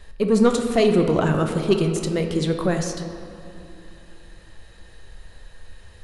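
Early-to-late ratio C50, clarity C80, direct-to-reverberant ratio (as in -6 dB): 6.5 dB, 7.5 dB, 4.5 dB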